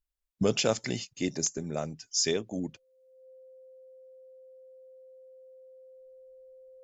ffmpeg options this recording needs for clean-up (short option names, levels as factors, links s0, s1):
-af "bandreject=f=520:w=30"